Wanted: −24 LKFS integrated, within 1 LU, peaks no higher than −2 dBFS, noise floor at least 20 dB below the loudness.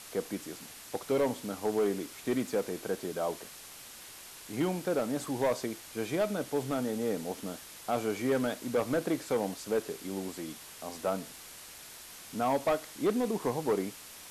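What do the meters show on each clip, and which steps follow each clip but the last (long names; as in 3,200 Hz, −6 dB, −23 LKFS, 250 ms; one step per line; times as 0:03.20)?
share of clipped samples 1.2%; peaks flattened at −22.5 dBFS; background noise floor −49 dBFS; target noise floor −53 dBFS; integrated loudness −33.0 LKFS; sample peak −22.5 dBFS; target loudness −24.0 LKFS
→ clipped peaks rebuilt −22.5 dBFS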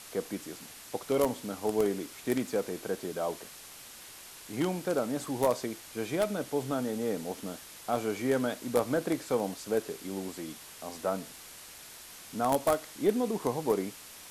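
share of clipped samples 0.0%; background noise floor −49 dBFS; target noise floor −53 dBFS
→ broadband denoise 6 dB, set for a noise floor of −49 dBFS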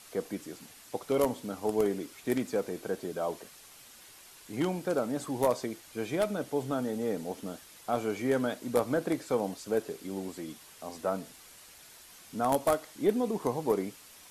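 background noise floor −54 dBFS; integrated loudness −32.5 LKFS; sample peak −13.5 dBFS; target loudness −24.0 LKFS
→ level +8.5 dB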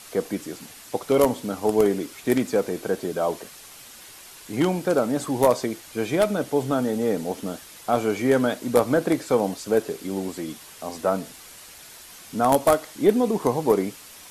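integrated loudness −24.0 LKFS; sample peak −5.0 dBFS; background noise floor −45 dBFS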